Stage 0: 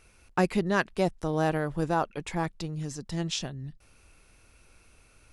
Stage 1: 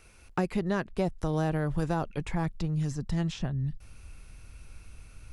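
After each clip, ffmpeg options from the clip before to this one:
-filter_complex "[0:a]asubboost=boost=3.5:cutoff=200,acrossover=split=580|2000[s0][s1][s2];[s0]acompressor=threshold=0.0355:ratio=4[s3];[s1]acompressor=threshold=0.0126:ratio=4[s4];[s2]acompressor=threshold=0.00316:ratio=4[s5];[s3][s4][s5]amix=inputs=3:normalize=0,volume=1.33"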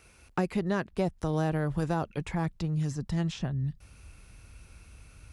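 -af "highpass=43"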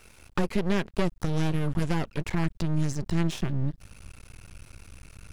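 -af "aeval=exprs='max(val(0),0)':c=same,volume=2.51"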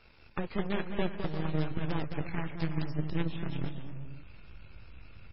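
-af "aecho=1:1:210|346.5|435.2|492.9|530.4:0.631|0.398|0.251|0.158|0.1,aeval=exprs='0.376*(cos(1*acos(clip(val(0)/0.376,-1,1)))-cos(1*PI/2))+0.0299*(cos(8*acos(clip(val(0)/0.376,-1,1)))-cos(8*PI/2))':c=same,volume=0.562" -ar 16000 -c:a libmp3lame -b:a 16k

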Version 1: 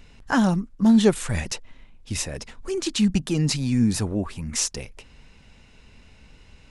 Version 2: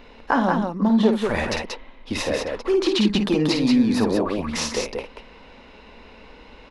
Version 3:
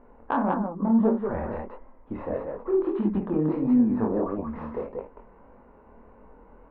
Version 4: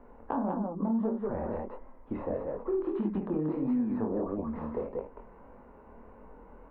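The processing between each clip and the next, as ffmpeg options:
-filter_complex "[0:a]equalizer=f=125:t=o:w=1:g=-10,equalizer=f=250:t=o:w=1:g=8,equalizer=f=500:t=o:w=1:g=11,equalizer=f=1000:t=o:w=1:g=11,equalizer=f=2000:t=o:w=1:g=4,equalizer=f=4000:t=o:w=1:g=7,equalizer=f=8000:t=o:w=1:g=-12,acompressor=threshold=0.158:ratio=8,asplit=2[s0][s1];[s1]aecho=0:1:52.48|183.7:0.447|0.631[s2];[s0][s2]amix=inputs=2:normalize=0,volume=0.891"
-af "lowpass=f=1300:w=0.5412,lowpass=f=1300:w=1.3066,aeval=exprs='0.501*(cos(1*acos(clip(val(0)/0.501,-1,1)))-cos(1*PI/2))+0.0398*(cos(3*acos(clip(val(0)/0.501,-1,1)))-cos(3*PI/2))':c=same,flanger=delay=20:depth=6.6:speed=1.6"
-filter_complex "[0:a]acrossover=split=190|950[s0][s1][s2];[s0]acompressor=threshold=0.01:ratio=4[s3];[s1]acompressor=threshold=0.0316:ratio=4[s4];[s2]acompressor=threshold=0.00224:ratio=4[s5];[s3][s4][s5]amix=inputs=3:normalize=0"

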